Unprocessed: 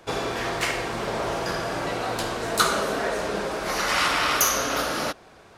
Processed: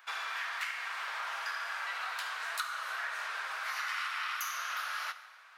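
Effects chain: high-pass 1.3 kHz 24 dB/octave; peaking EQ 8.1 kHz -15 dB 2.7 oct; compression 6:1, threshold -38 dBFS, peak gain reduction 15 dB; plate-style reverb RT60 1.4 s, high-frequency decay 0.85×, DRR 11 dB; trim +4 dB

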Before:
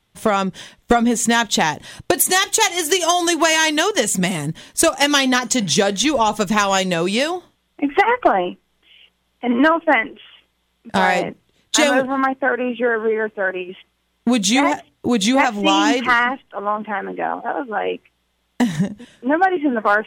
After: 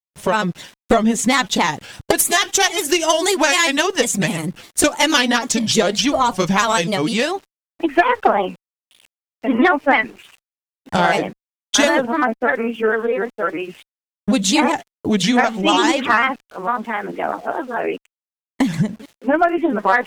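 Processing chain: small samples zeroed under -42 dBFS; Chebyshev shaper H 2 -21 dB, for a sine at -2.5 dBFS; granulator 100 ms, grains 20 per s, spray 14 ms, pitch spread up and down by 3 st; trim +1.5 dB

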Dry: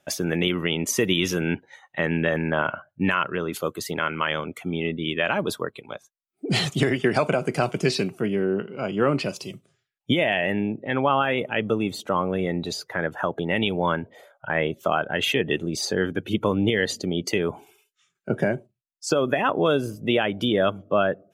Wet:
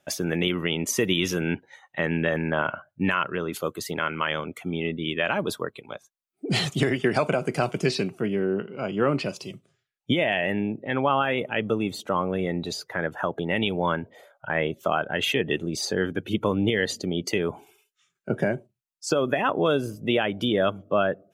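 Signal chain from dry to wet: 7.86–10.32 s: treble shelf 10 kHz -7.5 dB; trim -1.5 dB

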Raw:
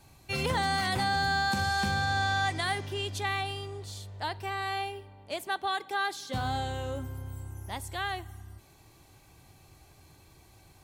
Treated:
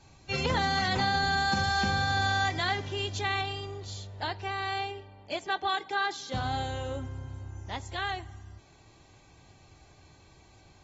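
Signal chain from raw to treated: treble shelf 8.3 kHz +5 dB; AAC 24 kbps 44.1 kHz

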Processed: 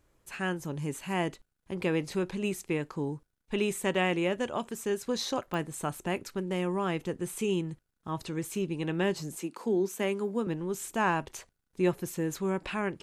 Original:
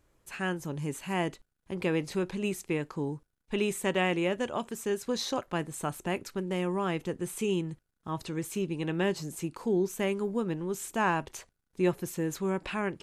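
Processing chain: 9.37–10.47 s: steep high-pass 190 Hz; clicks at 5.54 s, -23 dBFS

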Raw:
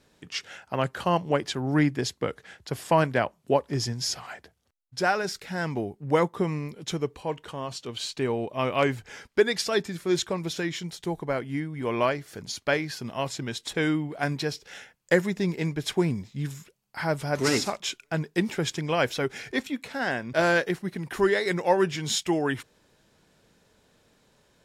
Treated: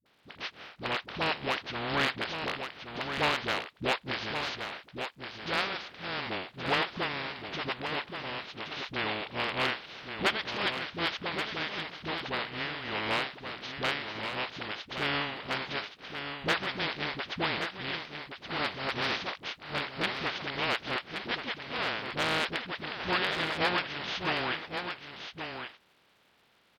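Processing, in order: spectral contrast reduction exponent 0.21; low-pass 4.2 kHz 24 dB/octave; spectral gate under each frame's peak -25 dB strong; high-pass 130 Hz 6 dB/octave; in parallel at -1.5 dB: compression 6:1, threshold -39 dBFS, peak gain reduction 20 dB; on the sum: crackle 530 per s -58 dBFS; one-sided clip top -13.5 dBFS, bottom -8.5 dBFS; phase dispersion highs, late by 54 ms, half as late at 370 Hz; on a send: delay 1034 ms -7.5 dB; on the sum: wide varispeed 0.92×; trim -4.5 dB

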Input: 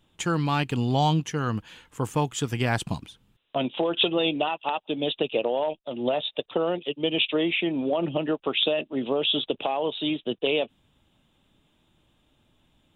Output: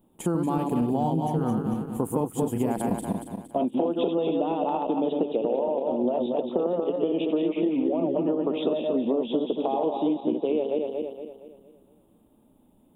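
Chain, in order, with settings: backward echo that repeats 116 ms, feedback 63%, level -3.5 dB; FFT filter 140 Hz 0 dB, 200 Hz +12 dB, 930 Hz +5 dB, 1.6 kHz -10 dB, 6 kHz -13 dB, 9.9 kHz +11 dB; compression, threshold -18 dBFS, peak gain reduction 9 dB; trim -3.5 dB

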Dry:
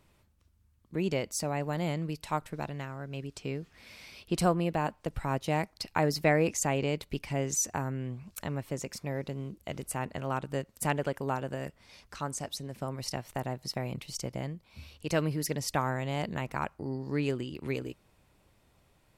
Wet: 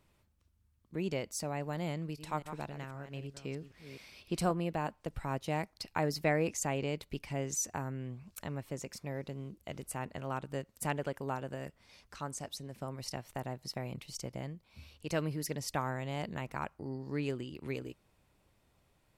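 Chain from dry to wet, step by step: 1.91–4.51 s: chunks repeated in reverse 258 ms, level -10 dB; trim -5 dB

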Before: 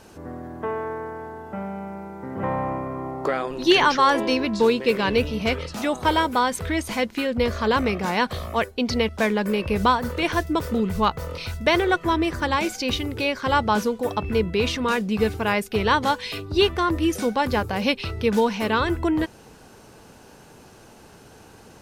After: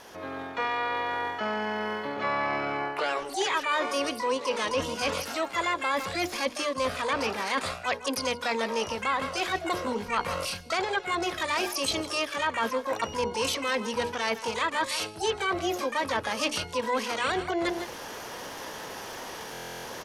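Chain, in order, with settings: tone controls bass -12 dB, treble -3 dB; speed mistake 44.1 kHz file played as 48 kHz; resonant high shelf 7.1 kHz -7 dB, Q 3; on a send: delay 160 ms -18.5 dB; on the sum: low-pass that closes with the level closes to 2.9 kHz, closed at -16 dBFS; level rider gain up to 10 dB; hum notches 60/120/180/240/300/360/420/480 Hz; harmony voices +12 st -4 dB; reverse; compression 4:1, threshold -28 dBFS, peak gain reduction 18 dB; reverse; buffer glitch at 19.52 s, samples 1024, times 13

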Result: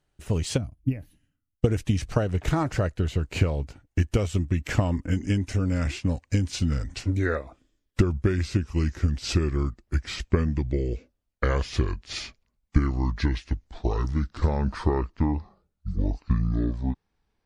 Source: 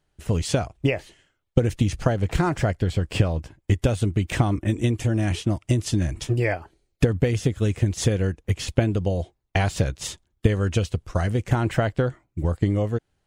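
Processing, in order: gliding tape speed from 98% -> 54%; time-frequency box 0.57–1.62 s, 310–9600 Hz -18 dB; trim -2.5 dB

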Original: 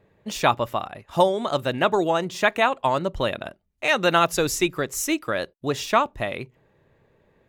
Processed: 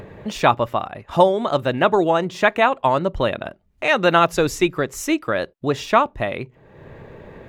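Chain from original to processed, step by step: treble shelf 4.4 kHz -11.5 dB; upward compressor, threshold -29 dBFS; trim +4.5 dB

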